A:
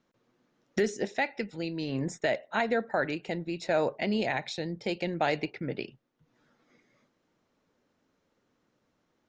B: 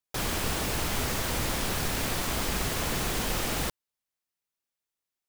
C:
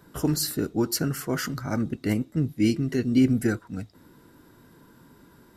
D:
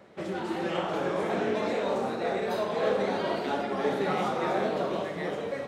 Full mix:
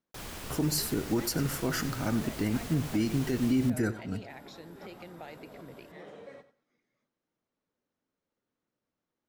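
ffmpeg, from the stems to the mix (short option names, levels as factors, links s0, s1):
-filter_complex "[0:a]acompressor=threshold=0.0316:ratio=2.5,volume=0.211,asplit=2[s0][s1];[1:a]volume=0.251,asplit=2[s2][s3];[s3]volume=0.0631[s4];[2:a]adelay=350,volume=0.794,asplit=2[s5][s6];[s6]volume=0.15[s7];[3:a]alimiter=limit=0.0841:level=0:latency=1,adelay=750,volume=0.178,asplit=2[s8][s9];[s9]volume=0.2[s10];[s1]apad=whole_len=283514[s11];[s8][s11]sidechaincompress=threshold=0.00126:ratio=8:attack=16:release=121[s12];[s4][s7][s10]amix=inputs=3:normalize=0,aecho=0:1:93|186|279:1|0.2|0.04[s13];[s0][s2][s5][s12][s13]amix=inputs=5:normalize=0,alimiter=limit=0.112:level=0:latency=1:release=86"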